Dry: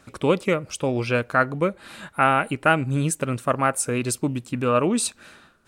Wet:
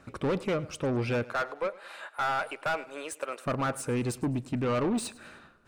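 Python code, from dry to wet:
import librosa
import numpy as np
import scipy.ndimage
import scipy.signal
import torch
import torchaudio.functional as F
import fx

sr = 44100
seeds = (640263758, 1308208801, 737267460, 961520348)

y = fx.highpass(x, sr, hz=500.0, slope=24, at=(1.24, 3.46))
y = 10.0 ** (-24.0 / 20.0) * np.tanh(y / 10.0 ** (-24.0 / 20.0))
y = fx.high_shelf(y, sr, hz=3600.0, db=-11.0)
y = fx.notch(y, sr, hz=3300.0, q=27.0)
y = fx.echo_feedback(y, sr, ms=104, feedback_pct=43, wet_db=-20.5)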